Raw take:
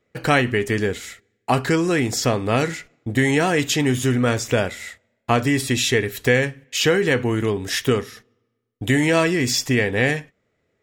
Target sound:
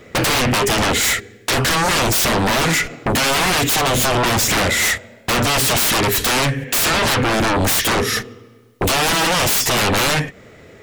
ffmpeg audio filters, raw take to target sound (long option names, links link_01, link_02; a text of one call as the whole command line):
ffmpeg -i in.wav -af "acompressor=threshold=-30dB:ratio=5,aeval=exprs='0.141*sin(PI/2*10*val(0)/0.141)':channel_layout=same,volume=3.5dB" out.wav